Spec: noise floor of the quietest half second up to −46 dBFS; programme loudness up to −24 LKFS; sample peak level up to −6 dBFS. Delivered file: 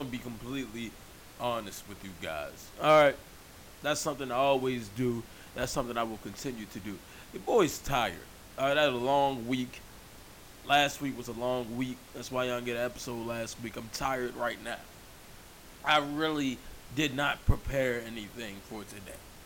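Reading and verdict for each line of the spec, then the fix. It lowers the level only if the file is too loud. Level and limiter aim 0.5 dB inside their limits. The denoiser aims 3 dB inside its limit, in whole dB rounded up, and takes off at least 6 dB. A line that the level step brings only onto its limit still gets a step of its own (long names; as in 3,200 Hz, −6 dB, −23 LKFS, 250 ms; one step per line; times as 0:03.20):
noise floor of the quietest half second −51 dBFS: in spec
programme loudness −31.5 LKFS: in spec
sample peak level −12.0 dBFS: in spec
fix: no processing needed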